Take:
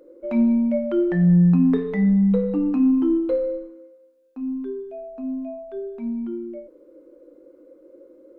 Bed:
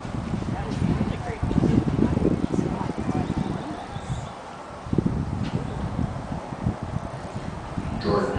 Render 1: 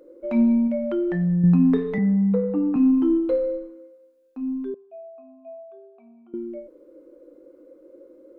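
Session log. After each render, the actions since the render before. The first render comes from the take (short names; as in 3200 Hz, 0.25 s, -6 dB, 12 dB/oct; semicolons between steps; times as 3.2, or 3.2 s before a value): 0.67–1.44 compressor 2.5:1, threshold -22 dBFS; 1.98–2.76 three-band isolator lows -16 dB, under 160 Hz, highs -22 dB, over 2400 Hz; 4.74–6.34 vowel filter a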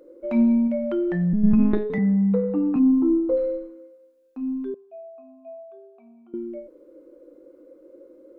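1.33–1.9 monotone LPC vocoder at 8 kHz 210 Hz; 2.79–3.37 polynomial smoothing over 65 samples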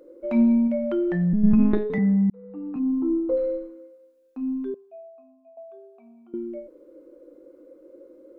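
2.3–3.54 fade in; 4.73–5.57 fade out, to -14.5 dB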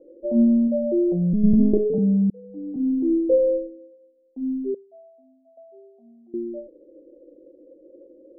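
dynamic EQ 480 Hz, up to +7 dB, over -39 dBFS, Q 1.5; steep low-pass 620 Hz 36 dB/oct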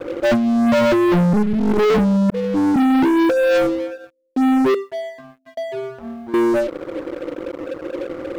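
negative-ratio compressor -22 dBFS, ratio -0.5; sample leveller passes 5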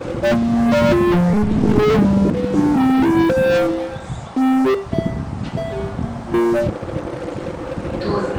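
add bed +2 dB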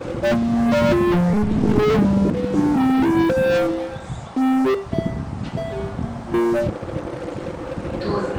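gain -2.5 dB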